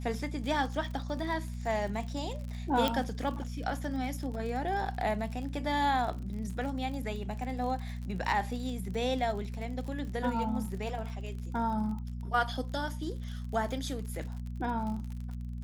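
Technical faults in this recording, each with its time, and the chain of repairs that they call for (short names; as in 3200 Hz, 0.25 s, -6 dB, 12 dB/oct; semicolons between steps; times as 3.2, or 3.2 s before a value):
crackle 45/s -38 dBFS
hum 60 Hz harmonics 4 -38 dBFS
2.88 pop -14 dBFS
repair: de-click; de-hum 60 Hz, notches 4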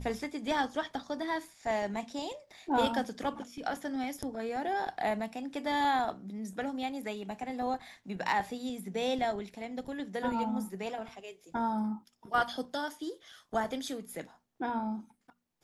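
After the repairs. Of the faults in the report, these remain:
none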